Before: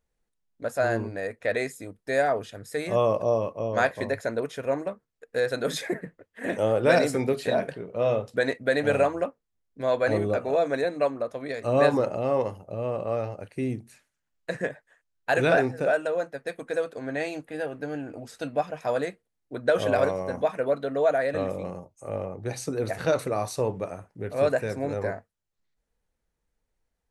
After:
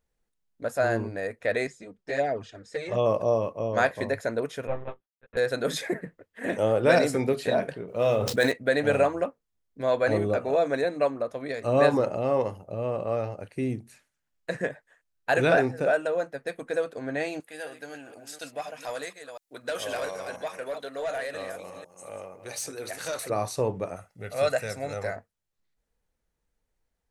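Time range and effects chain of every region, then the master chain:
0:01.67–0:03.06: low-pass filter 7,100 Hz 24 dB per octave + flanger swept by the level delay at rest 6.7 ms, full sweep at −18 dBFS
0:04.67–0:05.37: mu-law and A-law mismatch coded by A + one-pitch LPC vocoder at 8 kHz 130 Hz + string-ensemble chorus
0:07.88–0:08.52: running median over 5 samples + high-shelf EQ 4,000 Hz +10 dB + level that may fall only so fast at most 39 dB per second
0:17.40–0:23.30: delay that plays each chunk backwards 247 ms, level −9.5 dB + first-order pre-emphasis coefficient 0.8 + mid-hump overdrive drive 15 dB, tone 7,800 Hz, clips at −22 dBFS
0:23.96–0:25.16: tilt shelving filter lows −6.5 dB, about 1,300 Hz + comb filter 1.5 ms, depth 49%
whole clip: no processing

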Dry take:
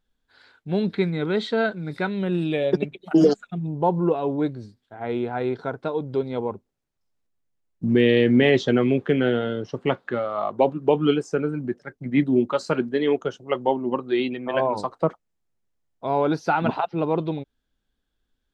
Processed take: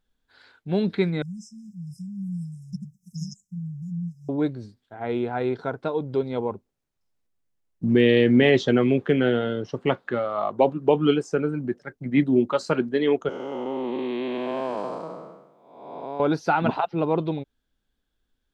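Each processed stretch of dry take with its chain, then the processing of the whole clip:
0:01.22–0:04.29: linear-phase brick-wall band-stop 210–5,000 Hz + low-shelf EQ 140 Hz −9 dB + one half of a high-frequency compander encoder only
0:13.29–0:16.20: spectrum smeared in time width 498 ms + high-pass filter 160 Hz 24 dB per octave + high-shelf EQ 4,300 Hz +4.5 dB
whole clip: no processing

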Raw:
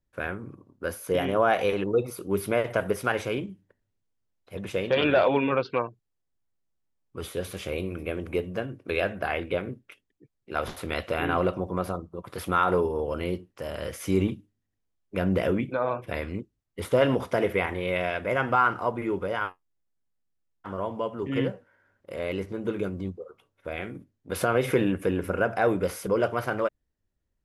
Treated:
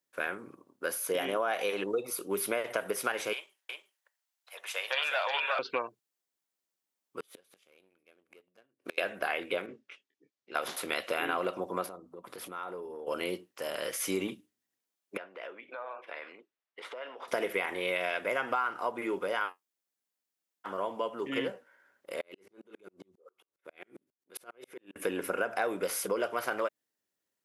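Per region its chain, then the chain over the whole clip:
0:03.33–0:05.59: high-pass filter 730 Hz 24 dB per octave + single-tap delay 361 ms −3.5 dB
0:07.20–0:08.98: gate with flip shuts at −28 dBFS, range −32 dB + leveller curve on the samples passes 1
0:09.66–0:10.55: low-pass filter 6,500 Hz 24 dB per octave + micro pitch shift up and down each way 23 cents
0:11.86–0:13.07: tilt shelving filter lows +4 dB, about 810 Hz + mains-hum notches 50/100/150/200/250 Hz + downward compressor 3 to 1, threshold −40 dBFS
0:15.17–0:17.28: downward compressor 12 to 1, threshold −32 dBFS + band-pass filter 570–2,900 Hz
0:22.21–0:24.96: parametric band 370 Hz +7.5 dB 0.25 octaves + downward compressor 8 to 1, threshold −34 dBFS + tremolo with a ramp in dB swelling 7.4 Hz, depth 40 dB
whole clip: high-pass filter 260 Hz 12 dB per octave; spectral tilt +2 dB per octave; downward compressor 6 to 1, threshold −27 dBFS

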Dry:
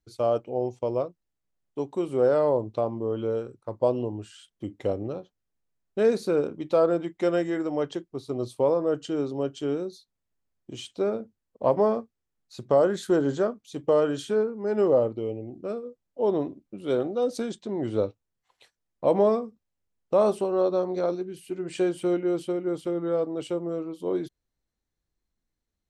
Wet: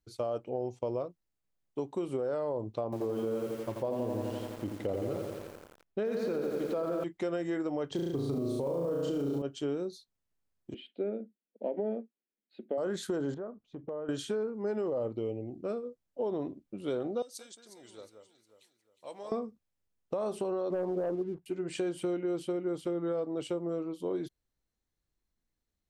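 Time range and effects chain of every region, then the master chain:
0:02.84–0:07.04: high-frequency loss of the air 97 metres + feedback echo at a low word length 85 ms, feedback 80%, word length 8 bits, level −5.5 dB
0:07.91–0:09.42: low-shelf EQ 390 Hz +11 dB + noise that follows the level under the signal 34 dB + flutter between parallel walls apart 6.1 metres, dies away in 0.86 s
0:10.74–0:12.78: elliptic high-pass filter 200 Hz + high-frequency loss of the air 340 metres + phaser with its sweep stopped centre 2,600 Hz, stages 4
0:13.34–0:14.09: low-pass filter 1,300 Hz + downward compressor 3 to 1, threshold −38 dBFS + hard clipping −27 dBFS
0:17.22–0:19.32: first-order pre-emphasis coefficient 0.97 + delay that swaps between a low-pass and a high-pass 180 ms, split 1,900 Hz, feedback 61%, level −6 dB
0:20.70–0:21.46: Butterworth low-pass 1,100 Hz + leveller curve on the samples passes 1
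whole clip: brickwall limiter −19.5 dBFS; downward compressor, threshold −27 dBFS; level −2 dB

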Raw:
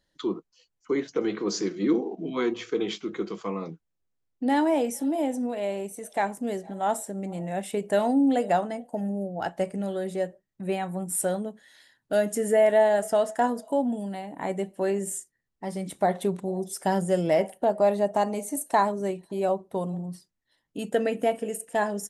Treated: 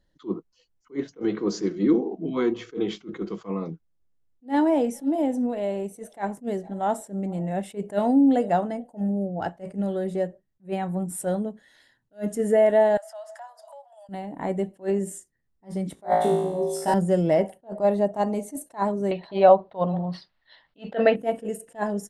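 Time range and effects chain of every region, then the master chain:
0:12.97–0:14.09: parametric band 4,800 Hz +6.5 dB 0.42 octaves + downward compressor, threshold −37 dBFS + Butterworth high-pass 580 Hz 96 dB per octave
0:15.95–0:16.94: low-shelf EQ 170 Hz −10 dB + flutter between parallel walls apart 3.1 metres, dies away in 0.93 s
0:19.11–0:21.16: drawn EQ curve 370 Hz 0 dB, 620 Hz +12 dB, 4,300 Hz +11 dB, 7,300 Hz −19 dB, 11,000 Hz −24 dB + one half of a high-frequency compander encoder only
whole clip: spectral tilt −2 dB per octave; notch filter 2,400 Hz, Q 20; level that may rise only so fast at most 310 dB per second

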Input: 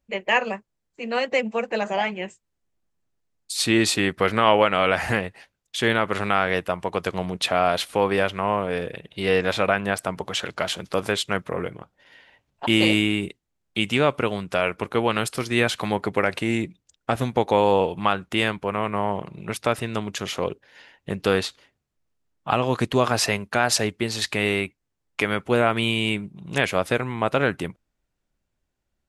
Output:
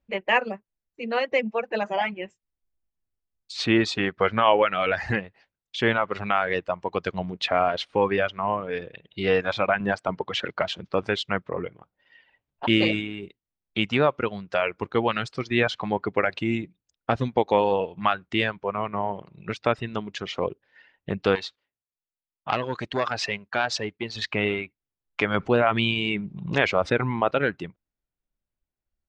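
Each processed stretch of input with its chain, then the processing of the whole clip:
0:09.80–0:10.62: high-pass filter 89 Hz + high-shelf EQ 2,300 Hz −4 dB + leveller curve on the samples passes 1
0:21.35–0:24.16: noise gate −50 dBFS, range −9 dB + low-shelf EQ 420 Hz −6 dB + saturating transformer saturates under 1,700 Hz
0:25.34–0:27.31: high-shelf EQ 8,200 Hz −4.5 dB + envelope flattener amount 50%
whole clip: Bessel low-pass filter 3,700 Hz, order 6; reverb reduction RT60 1.9 s

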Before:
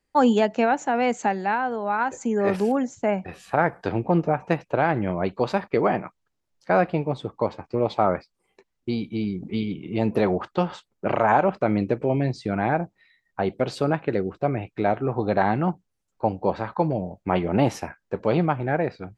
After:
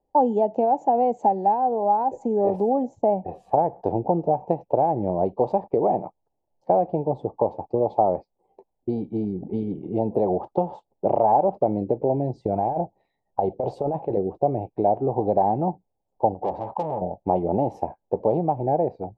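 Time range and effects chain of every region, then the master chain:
0:12.43–0:14.17: dynamic equaliser 250 Hz, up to −5 dB, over −36 dBFS, Q 1 + compressor whose output falls as the input rises −26 dBFS, ratio −0.5
0:16.34–0:17.02: parametric band 1,900 Hz +5.5 dB 1.1 octaves + saturating transformer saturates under 3,100 Hz
whole clip: dynamic equaliser 780 Hz, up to −4 dB, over −32 dBFS, Q 1.1; downward compressor, threshold −22 dBFS; drawn EQ curve 230 Hz 0 dB, 840 Hz +12 dB, 1,400 Hz −25 dB, 2,900 Hz −21 dB

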